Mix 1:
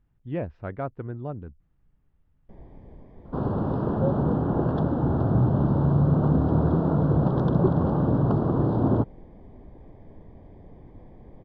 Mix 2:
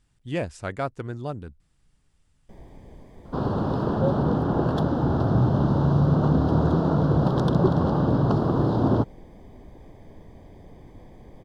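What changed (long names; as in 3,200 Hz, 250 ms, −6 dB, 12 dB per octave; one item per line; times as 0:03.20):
speech: remove high-frequency loss of the air 280 metres
master: remove head-to-tape spacing loss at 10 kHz 34 dB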